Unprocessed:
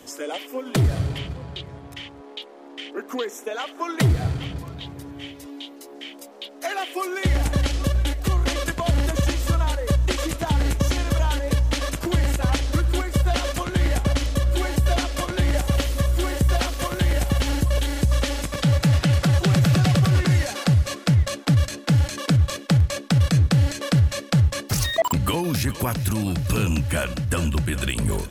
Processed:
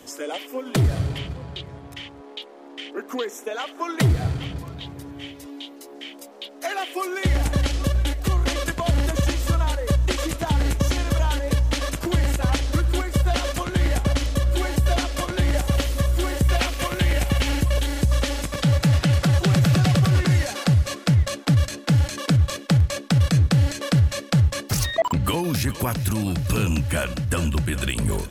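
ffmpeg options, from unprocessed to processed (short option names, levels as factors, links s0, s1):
-filter_complex "[0:a]asettb=1/sr,asplit=3[s0][s1][s2];[s0]atrim=end=16.454[s3];[s1]atrim=start=16.45:end=17.74,asetpts=PTS-STARTPTS,afade=t=in:d=0.004:c=qsin,afade=t=out:st=1.286:d=0.004:c=qsin,equalizer=f=2400:t=o:w=0.77:g=5.5[s4];[s2]atrim=start=17.736[s5];[s3][s4]acrossfade=d=0.004:c1=hsin:c2=qsin[s6];[s6][s5]acrossfade=d=0.004:c1=qsin:c2=hsin,asettb=1/sr,asplit=3[s7][s8][s9];[s7]atrim=end=24.854[s10];[s8]atrim=start=24.85:end=25.25,asetpts=PTS-STARTPTS,afade=t=in:d=0.004:c=qsin,afade=t=out:st=0.396:d=0.004:c=qsin,aemphasis=mode=reproduction:type=50kf[s11];[s9]atrim=start=25.246[s12];[s10][s11]acrossfade=d=0.004:c1=hsin:c2=qsin[s13];[s13][s12]acrossfade=d=0.004:c1=qsin:c2=hsin"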